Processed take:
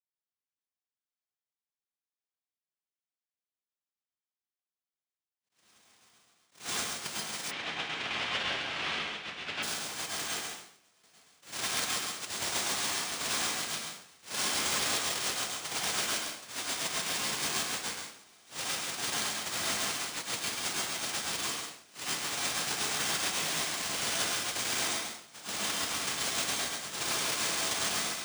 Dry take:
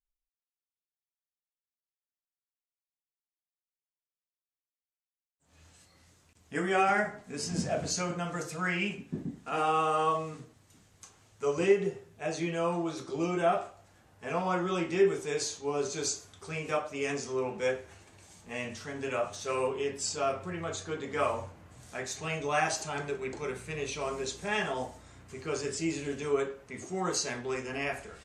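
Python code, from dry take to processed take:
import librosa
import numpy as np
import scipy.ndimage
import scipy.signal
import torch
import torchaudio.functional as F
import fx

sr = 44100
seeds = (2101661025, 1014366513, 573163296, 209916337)

y = fx.sine_speech(x, sr)
y = scipy.signal.sosfilt(scipy.signal.butter(2, 480.0, 'highpass', fs=sr, output='sos'), y)
y = fx.env_lowpass_down(y, sr, base_hz=1600.0, full_db=-31.5)
y = fx.peak_eq(y, sr, hz=1600.0, db=9.0, octaves=0.33)
y = fx.over_compress(y, sr, threshold_db=-38.0, ratio=-0.5)
y = fx.noise_vocoder(y, sr, seeds[0], bands=1)
y = y + 10.0 ** (-4.5 / 20.0) * np.pad(y, (int(135 * sr / 1000.0), 0))[:len(y)]
y = fx.rev_plate(y, sr, seeds[1], rt60_s=0.53, hf_ratio=0.9, predelay_ms=90, drr_db=-3.0)
y = np.repeat(y[::3], 3)[:len(y)]
y = fx.lowpass_res(y, sr, hz=2800.0, q=1.8, at=(7.5, 9.62), fade=0.02)
y = fx.attack_slew(y, sr, db_per_s=190.0)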